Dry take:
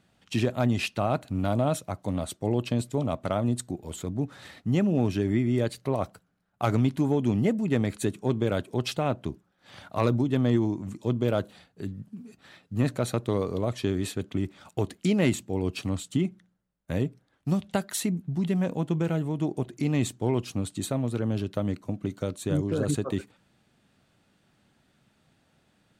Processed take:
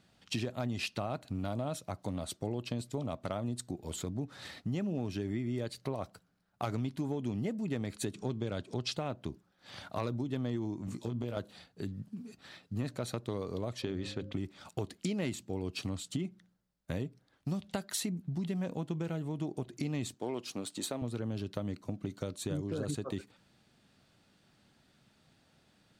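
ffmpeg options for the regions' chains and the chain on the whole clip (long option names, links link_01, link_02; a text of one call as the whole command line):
ffmpeg -i in.wav -filter_complex "[0:a]asettb=1/sr,asplit=3[link_01][link_02][link_03];[link_01]atrim=end=8.144[link_04];[link_02]atrim=start=8.14:end=8.93,asetpts=PTS-STARTPTS,afade=type=in:duration=0.004:curve=qsin,afade=type=out:start_time=0.786:duration=0.004:curve=qsin,bass=frequency=250:gain=3,treble=frequency=4000:gain=6,acompressor=mode=upward:threshold=-33dB:ratio=2.5:attack=3.2:release=140:knee=2.83:detection=peak,lowpass=6200[link_05];[link_03]atrim=start=8.926[link_06];[link_04][link_05]acrossfade=duration=0.004:curve1=hsin:curve2=qsin[link_07];[link_07][link_06]acrossfade=duration=0.004:curve1=qsin:curve2=hsin,asettb=1/sr,asplit=3[link_08][link_09][link_10];[link_08]atrim=end=10.864[link_11];[link_09]atrim=start=10.86:end=11.37,asetpts=PTS-STARTPTS,afade=type=in:duration=0.004:curve=qsin,afade=type=out:start_time=0.506:duration=0.004:curve=qsin,acompressor=threshold=-27dB:ratio=6:attack=3.2:release=140:knee=1:detection=peak,asplit=2[link_12][link_13];[link_13]adelay=17,volume=-3dB[link_14];[link_12][link_14]amix=inputs=2:normalize=0,atrim=end_sample=22491[link_15];[link_10]atrim=start=11.366[link_16];[link_11][link_15]acrossfade=duration=0.004:curve1=hsin:curve2=qsin[link_17];[link_17][link_16]acrossfade=duration=0.004:curve1=qsin:curve2=hsin,asettb=1/sr,asplit=3[link_18][link_19][link_20];[link_18]atrim=end=13.824[link_21];[link_19]atrim=start=13.82:end=14.33,asetpts=PTS-STARTPTS,afade=type=in:duration=0.004:curve=qsin,afade=type=out:start_time=0.506:duration=0.004:curve=qsin,lowpass=4500,bandreject=frequency=50:width_type=h:width=6,bandreject=frequency=100:width_type=h:width=6,bandreject=frequency=150:width_type=h:width=6,bandreject=frequency=200:width_type=h:width=6,bandreject=frequency=250:width_type=h:width=6,bandreject=frequency=300:width_type=h:width=6,aeval=exprs='val(0)+0.00355*sin(2*PI*530*n/s)':channel_layout=same[link_22];[link_20]atrim=start=14.326[link_23];[link_21][link_22]acrossfade=duration=0.004:curve1=hsin:curve2=qsin[link_24];[link_24][link_23]acrossfade=duration=0.004:curve1=qsin:curve2=hsin,asettb=1/sr,asplit=3[link_25][link_26][link_27];[link_25]atrim=end=20.144[link_28];[link_26]atrim=start=20.14:end=21.02,asetpts=PTS-STARTPTS,afade=type=in:duration=0.004:curve=qsin,afade=type=out:start_time=0.876:duration=0.004:curve=qsin,aeval=exprs='if(lt(val(0),0),0.708*val(0),val(0))':channel_layout=same,highpass=260[link_29];[link_27]atrim=start=21.016[link_30];[link_28][link_29]acrossfade=duration=0.004:curve1=hsin:curve2=qsin[link_31];[link_31][link_30]acrossfade=duration=0.004:curve1=qsin:curve2=hsin,acompressor=threshold=-33dB:ratio=3,equalizer=frequency=4700:width=1.7:gain=5.5,volume=-1.5dB" out.wav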